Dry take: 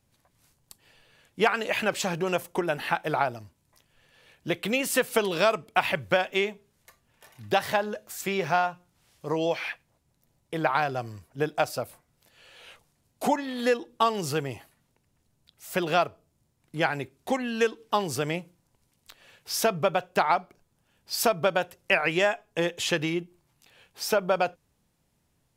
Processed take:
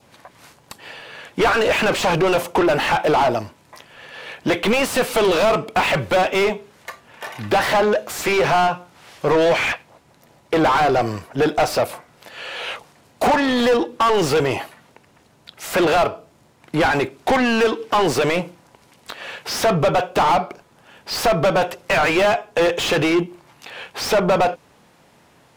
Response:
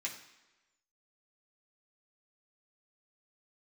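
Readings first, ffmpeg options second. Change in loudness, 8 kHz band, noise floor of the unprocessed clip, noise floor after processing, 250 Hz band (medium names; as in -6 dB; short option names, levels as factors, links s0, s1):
+8.5 dB, +5.5 dB, -72 dBFS, -55 dBFS, +10.0 dB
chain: -filter_complex "[0:a]asplit=2[s0][s1];[s1]highpass=f=720:p=1,volume=63.1,asoftclip=type=tanh:threshold=0.531[s2];[s0][s2]amix=inputs=2:normalize=0,lowpass=f=1500:p=1,volume=0.501,adynamicequalizer=threshold=0.0178:dfrequency=1700:dqfactor=2.4:tfrequency=1700:tqfactor=2.4:attack=5:release=100:ratio=0.375:range=2.5:mode=cutabove:tftype=bell,volume=0.841"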